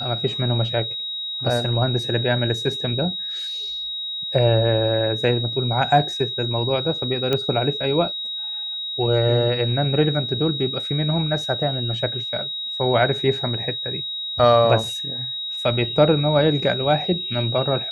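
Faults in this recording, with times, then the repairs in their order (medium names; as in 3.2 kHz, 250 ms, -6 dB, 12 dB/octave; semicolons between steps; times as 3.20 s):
whine 3.8 kHz -26 dBFS
7.33 s: pop -9 dBFS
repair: de-click; band-stop 3.8 kHz, Q 30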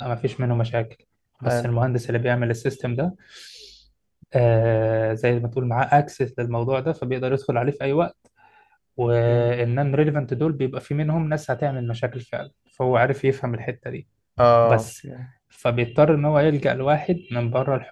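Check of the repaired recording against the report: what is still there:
nothing left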